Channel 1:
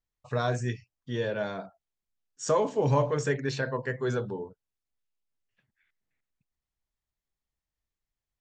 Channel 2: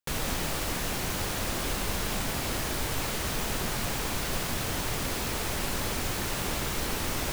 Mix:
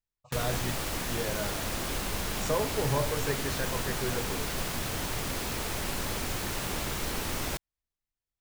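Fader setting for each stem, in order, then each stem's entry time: −5.0, −2.0 decibels; 0.00, 0.25 seconds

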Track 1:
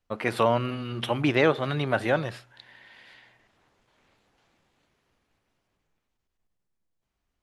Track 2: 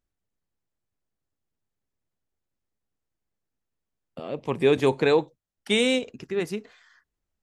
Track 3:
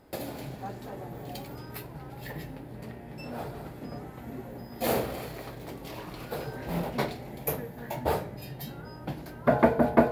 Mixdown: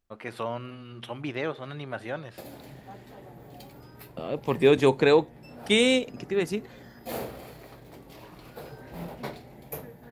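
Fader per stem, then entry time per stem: −10.0, +1.0, −7.0 decibels; 0.00, 0.00, 2.25 seconds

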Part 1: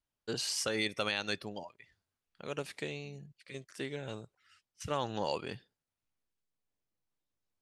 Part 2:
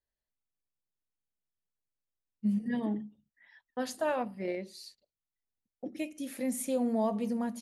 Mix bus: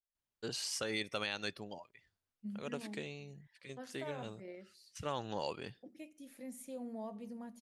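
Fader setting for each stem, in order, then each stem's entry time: −4.5, −14.5 decibels; 0.15, 0.00 seconds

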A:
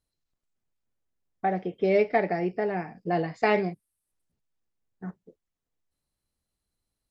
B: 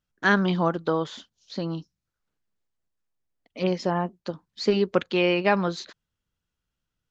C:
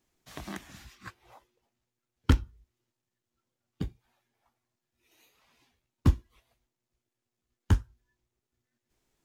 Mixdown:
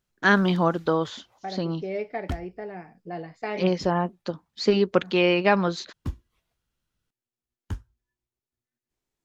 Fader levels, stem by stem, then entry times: −8.5, +1.5, −9.0 decibels; 0.00, 0.00, 0.00 seconds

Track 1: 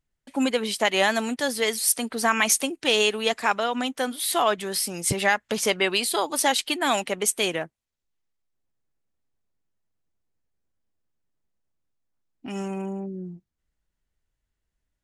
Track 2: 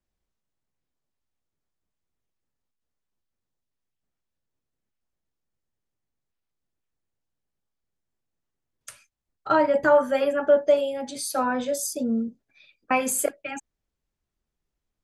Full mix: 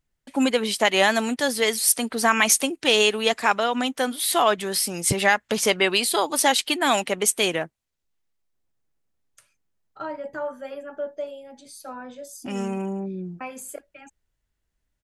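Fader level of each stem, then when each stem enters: +2.5, −12.5 decibels; 0.00, 0.50 seconds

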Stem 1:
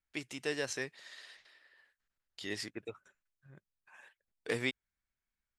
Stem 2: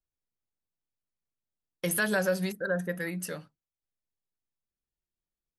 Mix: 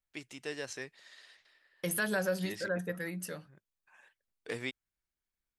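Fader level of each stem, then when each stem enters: −4.0, −4.5 decibels; 0.00, 0.00 seconds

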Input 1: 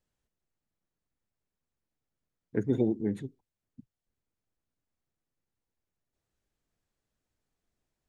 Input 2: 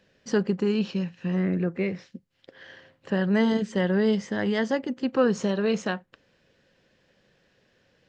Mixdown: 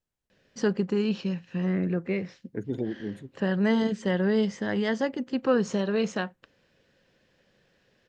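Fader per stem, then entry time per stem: −4.0, −1.5 decibels; 0.00, 0.30 seconds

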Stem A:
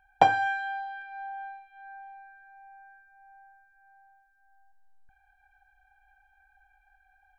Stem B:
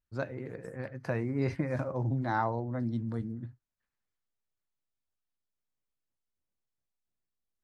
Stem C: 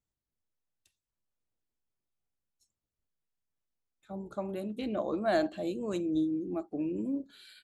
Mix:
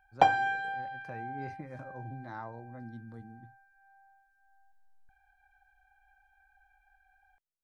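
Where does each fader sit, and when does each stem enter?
−2.5 dB, −12.5 dB, muted; 0.00 s, 0.00 s, muted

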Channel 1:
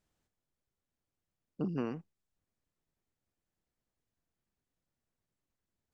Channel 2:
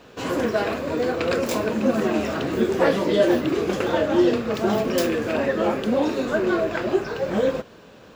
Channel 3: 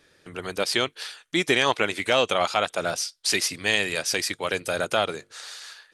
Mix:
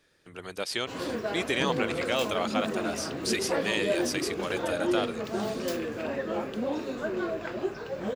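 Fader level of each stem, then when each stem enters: +1.5, −9.5, −7.5 decibels; 0.00, 0.70, 0.00 seconds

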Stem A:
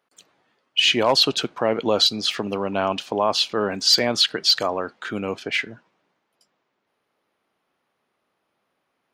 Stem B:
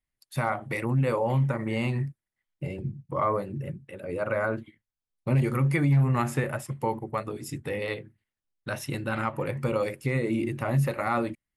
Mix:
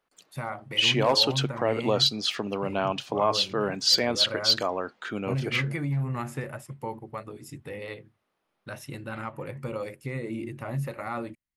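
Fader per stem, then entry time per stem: −4.5, −6.5 decibels; 0.00, 0.00 seconds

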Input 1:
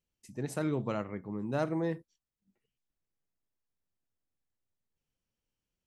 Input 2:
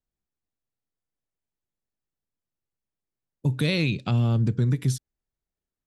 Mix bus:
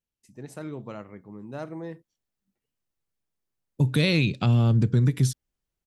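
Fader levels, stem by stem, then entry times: −4.5, +2.0 decibels; 0.00, 0.35 seconds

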